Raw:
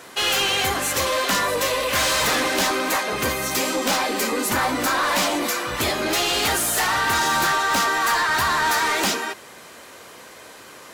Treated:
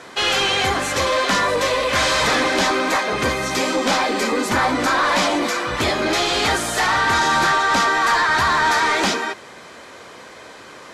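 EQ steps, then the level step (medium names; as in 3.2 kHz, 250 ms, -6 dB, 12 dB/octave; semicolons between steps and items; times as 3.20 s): brick-wall FIR low-pass 14 kHz; distance through air 72 m; band-stop 2.8 kHz, Q 17; +4.0 dB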